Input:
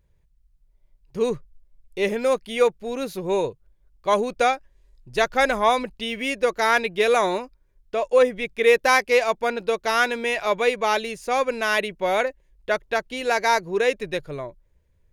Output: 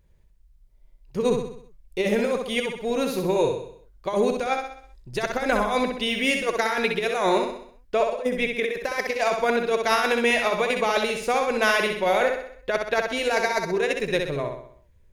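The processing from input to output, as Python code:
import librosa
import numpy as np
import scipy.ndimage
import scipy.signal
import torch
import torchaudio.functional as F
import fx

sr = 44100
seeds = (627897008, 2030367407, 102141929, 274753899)

p1 = fx.over_compress(x, sr, threshold_db=-22.0, ratio=-0.5)
y = p1 + fx.echo_feedback(p1, sr, ms=64, feedback_pct=49, wet_db=-5.0, dry=0)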